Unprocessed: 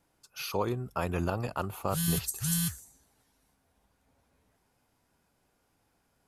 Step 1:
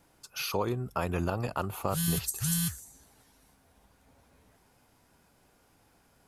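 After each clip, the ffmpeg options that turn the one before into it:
-af "acompressor=threshold=-48dB:ratio=1.5,volume=8dB"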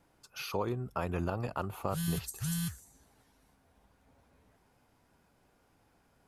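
-af "highshelf=f=3.8k:g=-7,volume=-3dB"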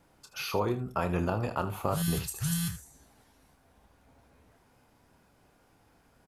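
-af "aecho=1:1:28|79:0.335|0.224,volume=4dB"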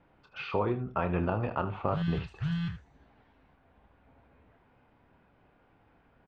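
-af "lowpass=f=3k:w=0.5412,lowpass=f=3k:w=1.3066"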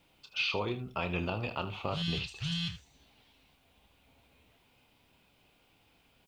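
-af "aexciter=amount=7.1:drive=7.4:freq=2.5k,volume=-5dB"

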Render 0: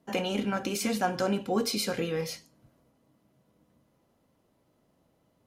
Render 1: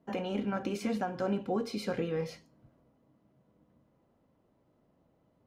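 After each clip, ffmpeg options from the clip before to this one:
-af "lowpass=f=1.4k:p=1,alimiter=limit=-21.5dB:level=0:latency=1:release=431"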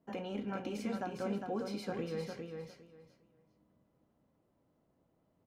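-af "aecho=1:1:405|810|1215:0.531|0.106|0.0212,volume=-6dB"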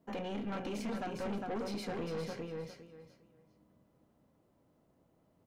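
-af "aeval=exprs='(tanh(89.1*val(0)+0.35)-tanh(0.35))/89.1':c=same,volume=5dB"

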